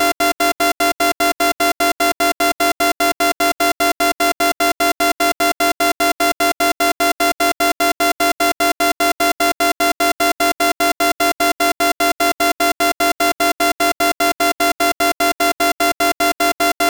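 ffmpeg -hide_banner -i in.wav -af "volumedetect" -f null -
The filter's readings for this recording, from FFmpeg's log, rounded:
mean_volume: -16.7 dB
max_volume: -8.2 dB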